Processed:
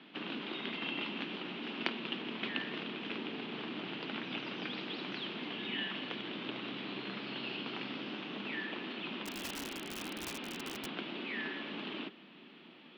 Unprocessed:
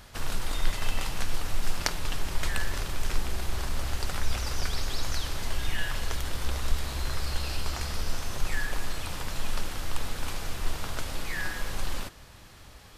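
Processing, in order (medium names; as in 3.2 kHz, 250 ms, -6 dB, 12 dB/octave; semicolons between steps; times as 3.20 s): high-order bell 900 Hz -11 dB 2.6 oct; mistuned SSB +64 Hz 160–3100 Hz; 9.25–10.86 s: integer overflow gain 38 dB; trim +4 dB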